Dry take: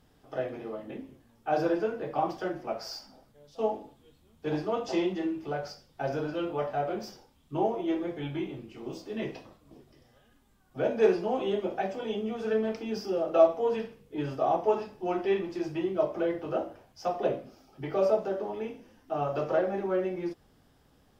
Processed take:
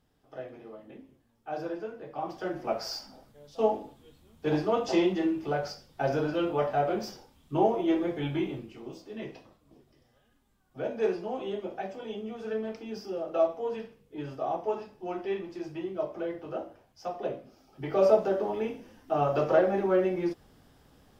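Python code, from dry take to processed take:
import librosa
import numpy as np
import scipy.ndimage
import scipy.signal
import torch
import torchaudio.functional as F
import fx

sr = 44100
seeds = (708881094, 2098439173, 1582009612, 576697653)

y = fx.gain(x, sr, db=fx.line((2.14, -8.0), (2.66, 3.5), (8.54, 3.5), (8.95, -5.0), (17.43, -5.0), (18.11, 4.0)))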